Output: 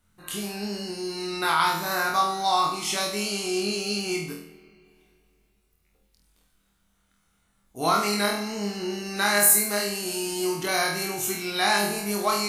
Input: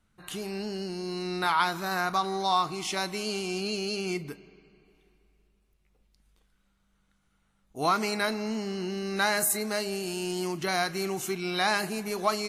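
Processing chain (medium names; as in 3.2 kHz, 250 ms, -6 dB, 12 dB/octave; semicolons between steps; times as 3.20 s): treble shelf 8.4 kHz +11 dB; on a send: flutter echo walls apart 4.2 m, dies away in 0.55 s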